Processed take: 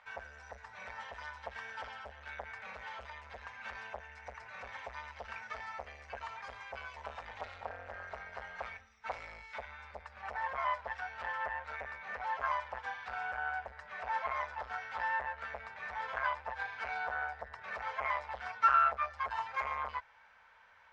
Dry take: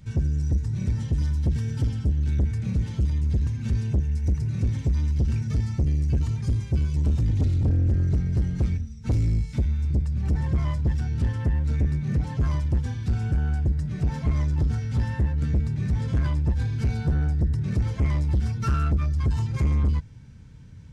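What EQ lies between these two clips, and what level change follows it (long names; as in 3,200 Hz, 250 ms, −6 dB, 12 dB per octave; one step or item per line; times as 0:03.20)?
inverse Chebyshev high-pass filter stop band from 350 Hz, stop band 40 dB
Chebyshev low-pass filter 1,600 Hz, order 2
+8.5 dB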